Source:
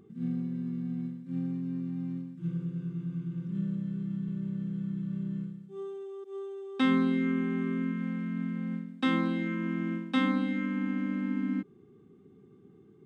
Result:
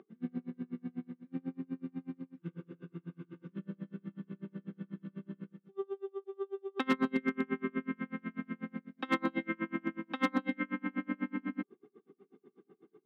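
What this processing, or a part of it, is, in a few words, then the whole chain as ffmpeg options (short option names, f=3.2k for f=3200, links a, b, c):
helicopter radio: -af "highpass=340,lowpass=2.6k,aeval=exprs='val(0)*pow(10,-34*(0.5-0.5*cos(2*PI*8.1*n/s))/20)':c=same,asoftclip=type=hard:threshold=-29dB,highpass=160,volume=8dB"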